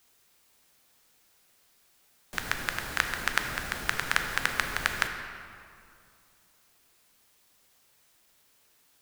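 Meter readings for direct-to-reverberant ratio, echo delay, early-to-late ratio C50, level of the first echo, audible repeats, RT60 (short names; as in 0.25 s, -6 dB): 5.0 dB, none, 6.0 dB, none, none, 2.4 s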